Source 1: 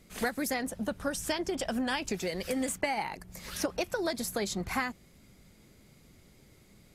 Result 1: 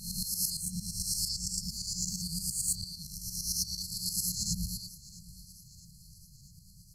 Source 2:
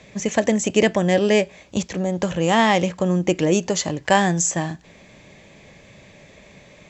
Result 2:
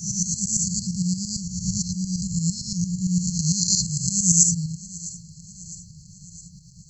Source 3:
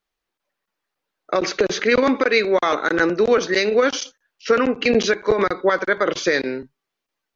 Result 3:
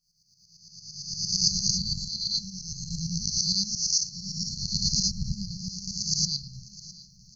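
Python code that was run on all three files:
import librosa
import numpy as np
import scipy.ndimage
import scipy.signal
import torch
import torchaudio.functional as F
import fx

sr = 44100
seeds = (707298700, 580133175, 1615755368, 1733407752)

p1 = fx.spec_swells(x, sr, rise_s=1.62)
p2 = fx.tremolo_shape(p1, sr, shape='saw_up', hz=8.8, depth_pct=75)
p3 = fx.brickwall_bandstop(p2, sr, low_hz=190.0, high_hz=4100.0)
p4 = p3 + fx.echo_feedback(p3, sr, ms=659, feedback_pct=57, wet_db=-19.0, dry=0)
y = p4 * 10.0 ** (5.0 / 20.0)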